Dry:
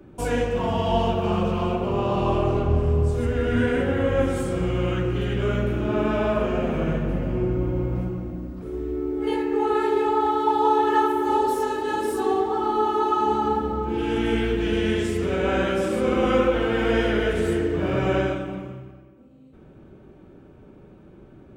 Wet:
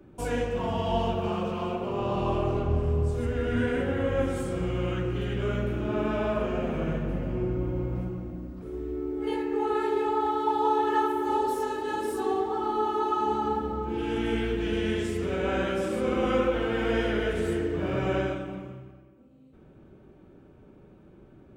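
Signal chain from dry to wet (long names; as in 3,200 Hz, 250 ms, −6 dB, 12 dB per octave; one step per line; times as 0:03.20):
0:01.29–0:02.01: high-pass filter 170 Hz 6 dB per octave
level −5 dB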